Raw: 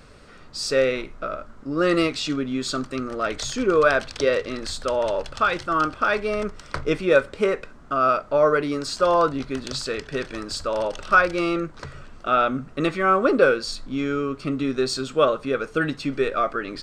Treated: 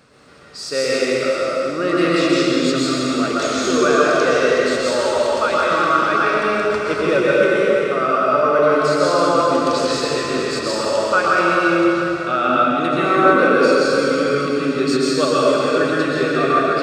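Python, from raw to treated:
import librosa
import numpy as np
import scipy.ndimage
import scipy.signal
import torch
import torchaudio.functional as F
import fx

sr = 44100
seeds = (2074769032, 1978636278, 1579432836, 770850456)

p1 = scipy.signal.sosfilt(scipy.signal.butter(2, 130.0, 'highpass', fs=sr, output='sos'), x)
p2 = fx.rider(p1, sr, range_db=3, speed_s=0.5)
p3 = p1 + (p2 * 10.0 ** (-2.0 / 20.0))
p4 = fx.rev_plate(p3, sr, seeds[0], rt60_s=3.6, hf_ratio=0.9, predelay_ms=105, drr_db=-7.5)
y = p4 * 10.0 ** (-6.5 / 20.0)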